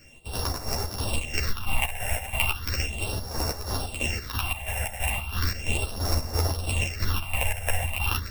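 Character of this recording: a buzz of ramps at a fixed pitch in blocks of 16 samples; phasing stages 6, 0.36 Hz, lowest notch 310–2900 Hz; chopped level 3 Hz, depth 60%, duty 55%; a shimmering, thickened sound

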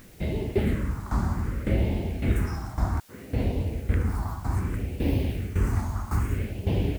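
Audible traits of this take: tremolo saw down 1.8 Hz, depth 80%; phasing stages 4, 0.63 Hz, lowest notch 460–1300 Hz; a quantiser's noise floor 10-bit, dither triangular

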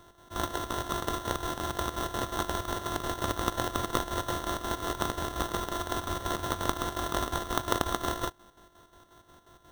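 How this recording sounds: a buzz of ramps at a fixed pitch in blocks of 32 samples; chopped level 5.6 Hz, depth 60%, duty 60%; aliases and images of a low sample rate 2400 Hz, jitter 0%

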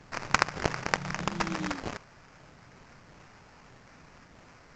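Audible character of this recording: phasing stages 8, 0.8 Hz, lowest notch 390–1300 Hz; aliases and images of a low sample rate 3600 Hz, jitter 20%; A-law

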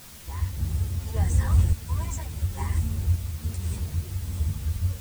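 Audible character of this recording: random-step tremolo, depth 65%; a quantiser's noise floor 8-bit, dither triangular; a shimmering, thickened sound

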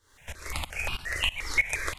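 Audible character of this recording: a quantiser's noise floor 12-bit, dither none; tremolo saw up 3.1 Hz, depth 90%; notches that jump at a steady rate 5.7 Hz 670–1900 Hz

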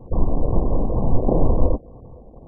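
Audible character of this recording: a buzz of ramps at a fixed pitch in blocks of 8 samples; phasing stages 12, 2.1 Hz, lowest notch 100–1700 Hz; aliases and images of a low sample rate 1000 Hz, jitter 0%; MP2

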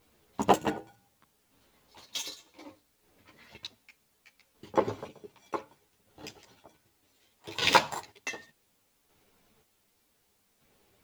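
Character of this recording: chopped level 0.66 Hz, depth 65%, duty 35%; a quantiser's noise floor 12-bit, dither triangular; a shimmering, thickened sound

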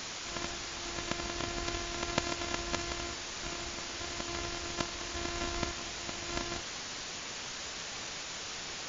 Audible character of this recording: a buzz of ramps at a fixed pitch in blocks of 128 samples; random-step tremolo, depth 80%; a quantiser's noise floor 6-bit, dither triangular; MP3

